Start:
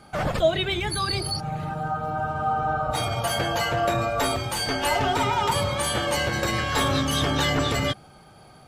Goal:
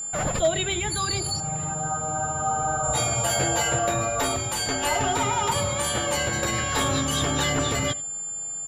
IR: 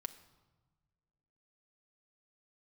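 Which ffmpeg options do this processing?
-filter_complex "[0:a]aeval=exprs='val(0)+0.0398*sin(2*PI*7200*n/s)':channel_layout=same,asettb=1/sr,asplit=3[link_01][link_02][link_03];[link_01]atrim=end=2.824[link_04];[link_02]atrim=start=2.82:end=3.79,asetpts=PTS-STARTPTS,afade=type=in:duration=0.004:curve=qsin,afade=type=out:start_time=0.966:duration=0.004:curve=qsin,asplit=2[link_05][link_06];[link_06]adelay=15,volume=-3dB[link_07];[link_05][link_07]amix=inputs=2:normalize=0,atrim=end_sample=42777[link_08];[link_03]atrim=start=3.786[link_09];[link_04][link_08]acrossfade=duration=0.004:curve1=hsin:curve2=qsin[link_10];[link_10][link_09]acrossfade=duration=0.004:curve1=qsin:curve2=hsin,aecho=1:1:87:0.0841,acrossover=split=5500[link_11][link_12];[link_11]volume=13.5dB,asoftclip=hard,volume=-13.5dB[link_13];[link_13][link_12]amix=inputs=2:normalize=0,volume=-1.5dB"

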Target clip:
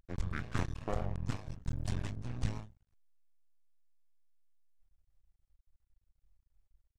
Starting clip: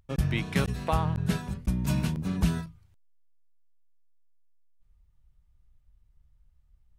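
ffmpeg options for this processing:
ffmpeg -i in.wav -af "aeval=exprs='max(val(0),0)':channel_layout=same,asetrate=28595,aresample=44100,atempo=1.54221,volume=-5dB" out.wav

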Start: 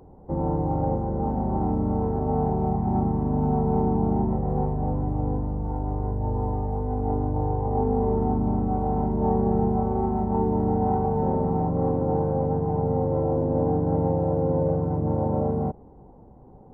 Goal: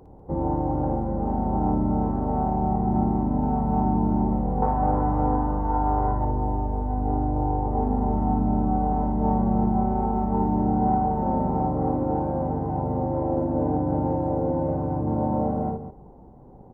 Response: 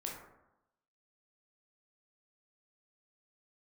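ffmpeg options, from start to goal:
-filter_complex "[0:a]asettb=1/sr,asplit=3[link_01][link_02][link_03];[link_01]atrim=end=4.624[link_04];[link_02]atrim=start=4.62:end=6.25,asetpts=PTS-STARTPTS,afade=type=in:duration=0.004:curve=qsin,afade=type=out:start_time=1.626:duration=0.004:curve=qsin,equalizer=frequency=1300:width_type=o:width=1.9:gain=14[link_05];[link_03]atrim=start=6.246[link_06];[link_04][link_05]acrossfade=duration=0.004:curve1=hsin:curve2=qsin[link_07];[link_07][link_06]acrossfade=duration=0.004:curve1=qsin:curve2=hsin,aecho=1:1:57|195:0.596|0.266"

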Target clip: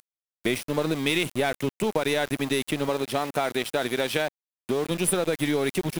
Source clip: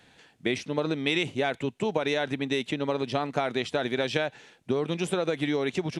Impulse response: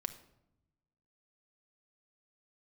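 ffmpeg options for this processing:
-filter_complex "[0:a]aexciter=amount=8.8:drive=9.2:freq=9600,asplit=2[link_01][link_02];[link_02]acompressor=threshold=-35dB:ratio=16,volume=-3dB[link_03];[link_01][link_03]amix=inputs=2:normalize=0,aeval=exprs='0.316*(cos(1*acos(clip(val(0)/0.316,-1,1)))-cos(1*PI/2))+0.0224*(cos(3*acos(clip(val(0)/0.316,-1,1)))-cos(3*PI/2))+0.02*(cos(4*acos(clip(val(0)/0.316,-1,1)))-cos(4*PI/2))+0.0251*(cos(5*acos(clip(val(0)/0.316,-1,1)))-cos(5*PI/2))':channel_layout=same,aeval=exprs='val(0)*gte(abs(val(0)),0.0251)':channel_layout=same,asettb=1/sr,asplit=3[link_04][link_05][link_06];[link_04]atrim=end=2.894[link_07];[link_05]atrim=start=2.89:end=4.91,asetpts=PTS-STARTPTS,afade=type=in:duration=0.004:curve=qsin,afade=type=out:start_time=2.016:duration=0.004:curve=qsin,lowshelf=frequency=130:gain=-9.5[link_08];[link_06]atrim=start=4.906[link_09];[link_07][link_08]acrossfade=duration=0.004:curve1=hsin:curve2=qsin[link_10];[link_10][link_09]acrossfade=duration=0.004:curve1=qsin:curve2=hsin"

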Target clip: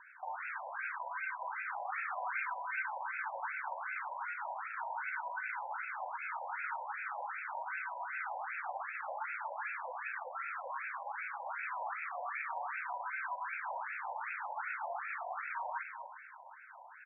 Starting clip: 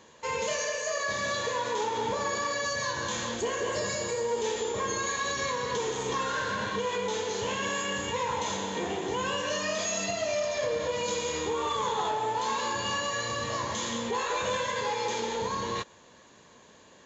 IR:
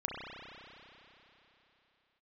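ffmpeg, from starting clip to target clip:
-filter_complex "[0:a]highpass=frequency=390:width_type=q:width=0.5412,highpass=frequency=390:width_type=q:width=1.307,lowpass=frequency=3500:width_type=q:width=0.5176,lowpass=frequency=3500:width_type=q:width=0.7071,lowpass=frequency=3500:width_type=q:width=1.932,afreqshift=-150,equalizer=frequency=460:width=6.9:gain=-3.5,alimiter=level_in=5.5dB:limit=-24dB:level=0:latency=1:release=91,volume=-5.5dB,aeval=exprs='0.0119*(abs(mod(val(0)/0.0119+3,4)-2)-1)':channel_layout=same,asettb=1/sr,asplit=3[link_01][link_02][link_03];[link_01]atrim=end=1.904[link_04];[link_02]atrim=start=1.9:end=2.82,asetpts=PTS-STARTPTS,afade=type=in:duration=0.004:curve=qsin,afade=type=out:start_time=0.916:duration=0.004:curve=qsin,highshelf=frequency=2600:gain=9[link_05];[link_03]atrim=start=2.816[link_06];[link_04][link_05]acrossfade=duration=0.004:curve1=hsin:curve2=qsin[link_07];[link_07][link_06]acrossfade=duration=0.004:curve1=qsin:curve2=hsin,asettb=1/sr,asplit=3[link_08][link_09][link_10];[link_08]atrim=end=5.824[link_11];[link_09]atrim=start=5.82:end=6.31,asetpts=PTS-STARTPTS,afade=type=in:duration=0.004:curve=qsin,afade=type=out:start_time=0.486:duration=0.004:curve=qsin,asuperstop=centerf=1900:order=4:qfactor=7.2[link_12];[link_10]atrim=start=6.306[link_13];[link_11][link_12]acrossfade=duration=0.004:curve1=hsin:curve2=qsin[link_14];[link_14][link_13]acrossfade=duration=0.004:curve1=qsin:curve2=hsin,aecho=1:1:237:0.422,asplit=2[link_15][link_16];[1:a]atrim=start_sample=2205[link_17];[link_16][link_17]afir=irnorm=-1:irlink=0,volume=-10dB[link_18];[link_15][link_18]amix=inputs=2:normalize=0,afftfilt=real='re*between(b*sr/1024,720*pow(1900/720,0.5+0.5*sin(2*PI*2.6*pts/sr))/1.41,720*pow(1900/720,0.5+0.5*sin(2*PI*2.6*pts/sr))*1.41)':imag='im*between(b*sr/1024,720*pow(1900/720,0.5+0.5*sin(2*PI*2.6*pts/sr))/1.41,720*pow(1900/720,0.5+0.5*sin(2*PI*2.6*pts/sr))*1.41)':win_size=1024:overlap=0.75,volume=5.5dB"

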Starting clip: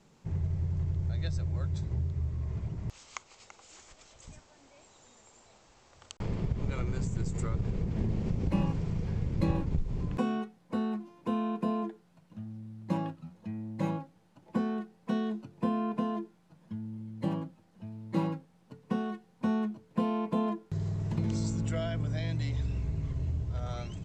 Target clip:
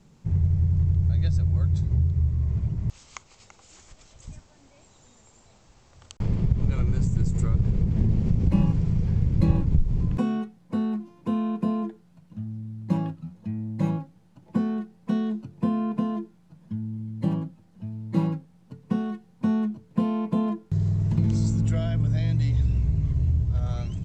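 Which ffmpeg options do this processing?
ffmpeg -i in.wav -af "bass=frequency=250:gain=10,treble=frequency=4000:gain=2" out.wav

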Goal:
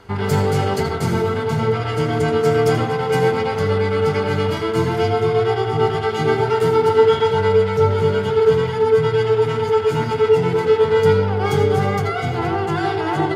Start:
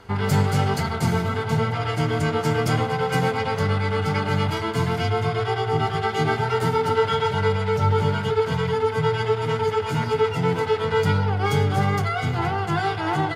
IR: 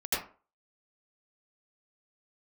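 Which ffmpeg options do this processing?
-filter_complex "[0:a]asplit=2[link_01][link_02];[link_02]equalizer=frequency=370:width=1.2:gain=14.5[link_03];[1:a]atrim=start_sample=2205[link_04];[link_03][link_04]afir=irnorm=-1:irlink=0,volume=-16dB[link_05];[link_01][link_05]amix=inputs=2:normalize=0"

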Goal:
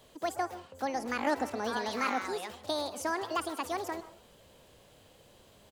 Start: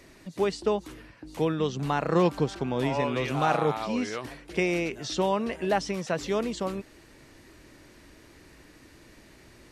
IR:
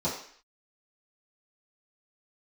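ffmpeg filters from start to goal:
-filter_complex "[0:a]asplit=6[link_01][link_02][link_03][link_04][link_05][link_06];[link_02]adelay=90,afreqshift=47,volume=-20dB[link_07];[link_03]adelay=180,afreqshift=94,volume=-24dB[link_08];[link_04]adelay=270,afreqshift=141,volume=-28dB[link_09];[link_05]adelay=360,afreqshift=188,volume=-32dB[link_10];[link_06]adelay=450,afreqshift=235,volume=-36.1dB[link_11];[link_01][link_07][link_08][link_09][link_10][link_11]amix=inputs=6:normalize=0,asetrate=74970,aresample=44100,asplit=2[link_12][link_13];[1:a]atrim=start_sample=2205,asetrate=61740,aresample=44100,adelay=125[link_14];[link_13][link_14]afir=irnorm=-1:irlink=0,volume=-24dB[link_15];[link_12][link_15]amix=inputs=2:normalize=0,volume=-6.5dB"

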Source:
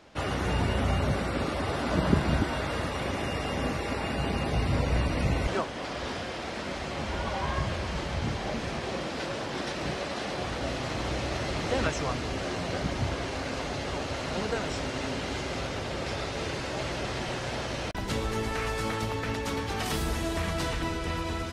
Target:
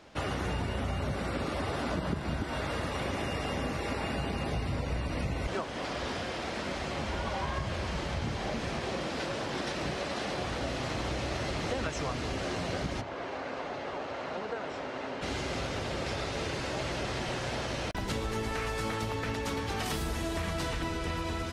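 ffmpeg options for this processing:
ffmpeg -i in.wav -filter_complex "[0:a]acompressor=threshold=-29dB:ratio=6,asplit=3[link_01][link_02][link_03];[link_01]afade=type=out:start_time=13:duration=0.02[link_04];[link_02]bandpass=frequency=830:width_type=q:width=0.58:csg=0,afade=type=in:start_time=13:duration=0.02,afade=type=out:start_time=15.21:duration=0.02[link_05];[link_03]afade=type=in:start_time=15.21:duration=0.02[link_06];[link_04][link_05][link_06]amix=inputs=3:normalize=0" out.wav

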